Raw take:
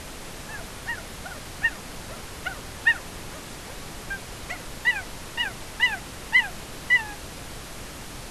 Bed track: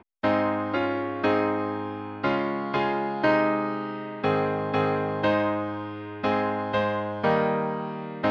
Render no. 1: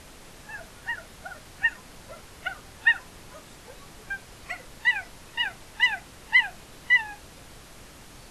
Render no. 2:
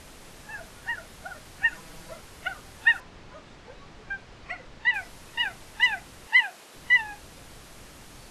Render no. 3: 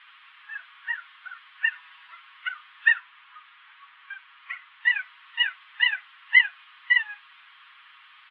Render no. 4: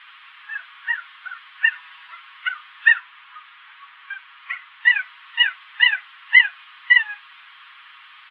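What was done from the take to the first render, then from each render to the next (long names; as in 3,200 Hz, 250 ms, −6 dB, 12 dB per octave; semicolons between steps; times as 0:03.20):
noise reduction from a noise print 9 dB
0:01.72–0:02.16: comb filter 6.2 ms; 0:03.00–0:04.94: high-frequency loss of the air 120 metres; 0:06.27–0:06.75: high-pass filter 340 Hz
elliptic band-pass filter 1,100–3,300 Hz, stop band 40 dB; comb filter 7.3 ms, depth 97%
level +6.5 dB; brickwall limiter −2 dBFS, peak gain reduction 2.5 dB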